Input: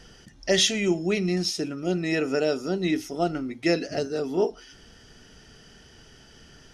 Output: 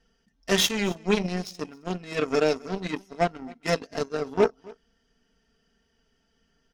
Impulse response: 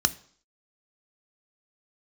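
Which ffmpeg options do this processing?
-af "highshelf=f=4.7k:g=-6,aecho=1:1:4.4:0.78,aeval=exprs='0.376*(cos(1*acos(clip(val(0)/0.376,-1,1)))-cos(1*PI/2))+0.00266*(cos(3*acos(clip(val(0)/0.376,-1,1)))-cos(3*PI/2))+0.0473*(cos(7*acos(clip(val(0)/0.376,-1,1)))-cos(7*PI/2))':c=same,aecho=1:1:266:0.0668"

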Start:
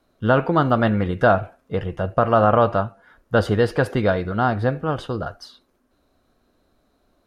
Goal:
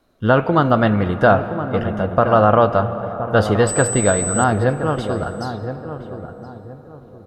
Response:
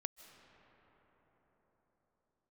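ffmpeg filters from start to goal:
-filter_complex "[0:a]asettb=1/sr,asplit=3[a][b][c];[a]atrim=end=3.674[d];[b]atrim=start=3.67:end=4.44,asetpts=PTS-STARTPTS,afade=t=in:d=0.004:c=qsin,afade=t=out:st=0.766:d=0.004:c=qsin,aeval=exprs='val(0)+0.0562*sin(2*PI*8000*n/s)':c=same[e];[c]atrim=start=4.436[f];[d][e]acrossfade=d=0.004:c1=hsin:c2=qsin[g];[g][f]acrossfade=d=0.004:c1=qsin:c2=hsin,asplit=2[h][i];[i]adelay=1020,lowpass=f=990:p=1,volume=-9dB,asplit=2[j][k];[k]adelay=1020,lowpass=f=990:p=1,volume=0.33,asplit=2[l][m];[m]adelay=1020,lowpass=f=990:p=1,volume=0.33,asplit=2[n][o];[o]adelay=1020,lowpass=f=990:p=1,volume=0.33[p];[h][j][l][n][p]amix=inputs=5:normalize=0,asplit=2[q][r];[1:a]atrim=start_sample=2205[s];[r][s]afir=irnorm=-1:irlink=0,volume=8dB[t];[q][t]amix=inputs=2:normalize=0,volume=-6dB"

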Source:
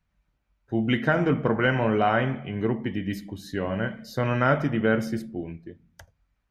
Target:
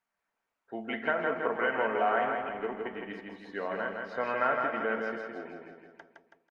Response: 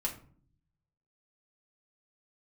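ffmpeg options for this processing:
-filter_complex "[0:a]aecho=1:1:4.4:0.32,acompressor=threshold=-22dB:ratio=3,highpass=570,lowpass=2k,asplit=2[a][b];[b]aecho=0:1:163|326|489|652|815|978|1141:0.631|0.341|0.184|0.0994|0.0537|0.029|0.0156[c];[a][c]amix=inputs=2:normalize=0" -ar 48000 -c:a libopus -b:a 32k

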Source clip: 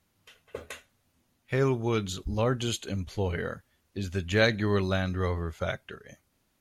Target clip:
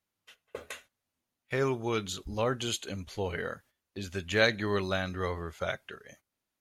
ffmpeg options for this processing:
-af "agate=range=-12dB:threshold=-54dB:ratio=16:detection=peak,lowshelf=f=270:g=-9"

